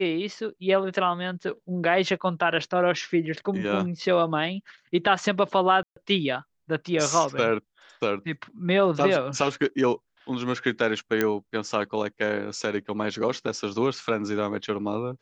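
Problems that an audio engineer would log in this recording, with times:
0:05.83–0:05.96: drop-out 134 ms
0:11.21: click −9 dBFS

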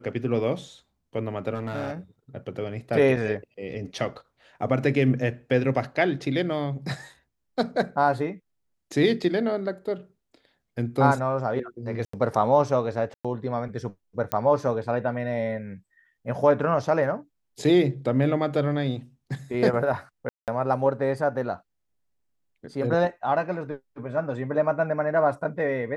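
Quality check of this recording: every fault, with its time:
0:01.54–0:01.92: clipping −25.5 dBFS
0:12.05–0:12.13: drop-out 84 ms
0:13.14–0:13.25: drop-out 106 ms
0:14.32: click −11 dBFS
0:20.29–0:20.48: drop-out 188 ms

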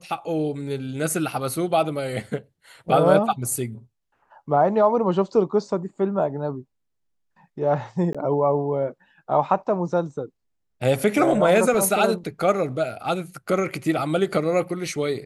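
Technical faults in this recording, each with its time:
0:08.13–0:08.15: drop-out 16 ms

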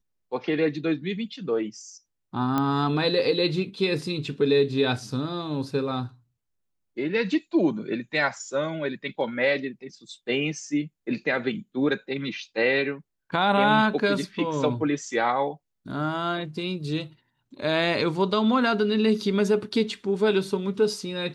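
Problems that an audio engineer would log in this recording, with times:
0:02.58: click −12 dBFS

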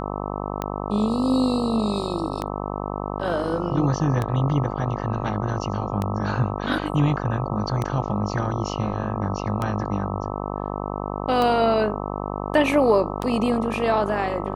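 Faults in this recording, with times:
mains buzz 50 Hz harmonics 26 −29 dBFS
scratch tick 33 1/3 rpm −12 dBFS

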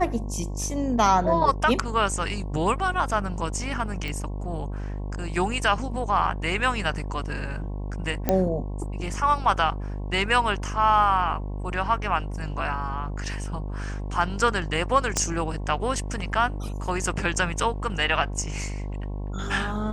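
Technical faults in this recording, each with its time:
mains buzz 50 Hz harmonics 22 −31 dBFS
0:04.08: click
0:08.29: click −7 dBFS
0:15.17: click −9 dBFS

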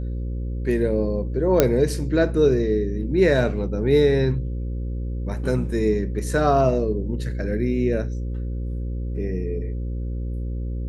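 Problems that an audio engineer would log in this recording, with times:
mains buzz 60 Hz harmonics 9 −27 dBFS
0:01.60: click −1 dBFS

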